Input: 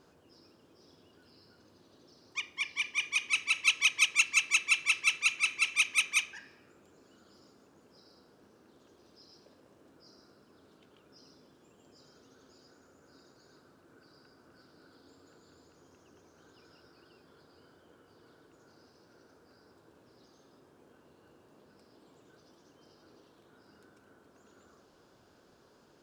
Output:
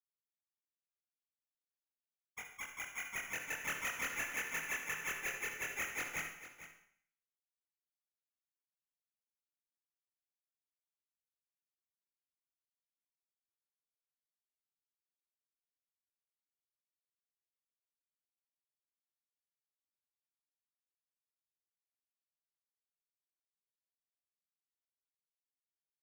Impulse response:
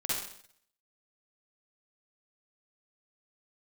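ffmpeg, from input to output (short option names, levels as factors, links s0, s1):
-filter_complex "[0:a]acrusher=samples=10:mix=1:aa=0.000001,aeval=exprs='sgn(val(0))*max(abs(val(0))-0.00944,0)':c=same,flanger=delay=19:depth=6.7:speed=0.11,asoftclip=type=tanh:threshold=0.0335,aecho=1:1:448:0.211,asplit=2[s0][s1];[1:a]atrim=start_sample=2205[s2];[s1][s2]afir=irnorm=-1:irlink=0,volume=0.355[s3];[s0][s3]amix=inputs=2:normalize=0,volume=0.473"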